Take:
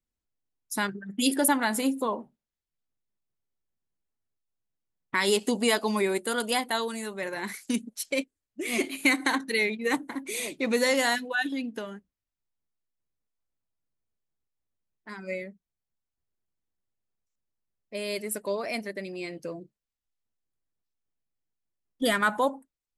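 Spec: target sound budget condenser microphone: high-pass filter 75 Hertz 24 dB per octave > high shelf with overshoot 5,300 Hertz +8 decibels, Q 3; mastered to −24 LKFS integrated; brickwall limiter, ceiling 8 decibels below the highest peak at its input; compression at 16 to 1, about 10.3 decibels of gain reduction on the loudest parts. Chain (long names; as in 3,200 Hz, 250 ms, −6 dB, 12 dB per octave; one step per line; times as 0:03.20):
downward compressor 16 to 1, threshold −29 dBFS
brickwall limiter −24 dBFS
high-pass filter 75 Hz 24 dB per octave
high shelf with overshoot 5,300 Hz +8 dB, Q 3
level +8.5 dB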